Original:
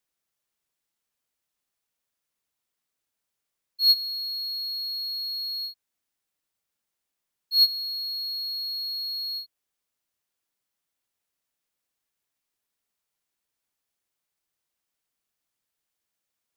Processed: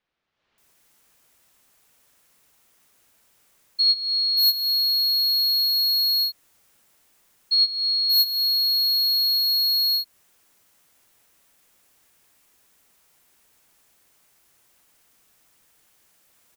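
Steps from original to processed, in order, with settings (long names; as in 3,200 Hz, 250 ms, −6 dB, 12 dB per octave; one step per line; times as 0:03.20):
multiband delay without the direct sound lows, highs 580 ms, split 4,100 Hz
automatic gain control gain up to 15 dB
dynamic equaliser 4,000 Hz, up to −7 dB, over −22 dBFS, Q 1.7
downward compressor 2 to 1, threshold −30 dBFS, peak gain reduction 10 dB
level +7 dB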